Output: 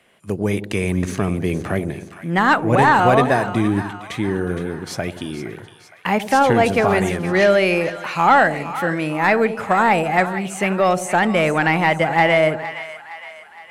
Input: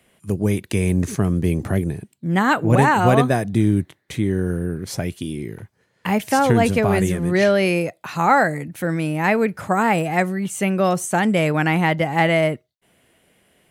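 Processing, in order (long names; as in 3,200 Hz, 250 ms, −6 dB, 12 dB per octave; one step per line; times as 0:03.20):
mid-hump overdrive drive 11 dB, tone 2,700 Hz, clips at −2 dBFS
echo with a time of its own for lows and highs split 810 Hz, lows 88 ms, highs 464 ms, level −12 dB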